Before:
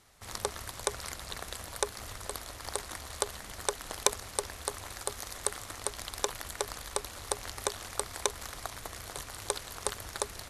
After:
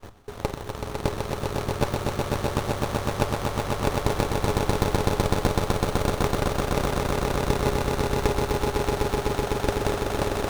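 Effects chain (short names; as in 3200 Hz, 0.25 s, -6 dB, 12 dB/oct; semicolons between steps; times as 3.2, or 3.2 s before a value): slices in reverse order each 93 ms, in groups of 3; swelling echo 0.126 s, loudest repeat 8, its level -4 dB; reverb, pre-delay 7 ms, DRR 8.5 dB; maximiser +5.5 dB; running maximum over 17 samples; gain -1 dB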